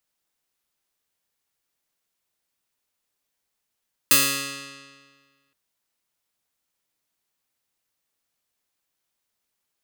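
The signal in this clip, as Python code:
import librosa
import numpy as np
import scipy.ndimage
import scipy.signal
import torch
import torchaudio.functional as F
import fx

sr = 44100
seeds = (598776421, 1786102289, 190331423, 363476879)

y = fx.pluck(sr, length_s=1.42, note=49, decay_s=1.66, pick=0.18, brightness='bright')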